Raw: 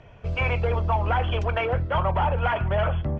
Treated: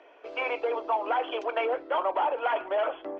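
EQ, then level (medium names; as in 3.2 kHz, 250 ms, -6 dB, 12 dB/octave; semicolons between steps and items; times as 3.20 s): elliptic high-pass 300 Hz, stop band 40 dB; dynamic bell 1.7 kHz, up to -4 dB, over -41 dBFS, Q 1.2; distance through air 96 m; 0.0 dB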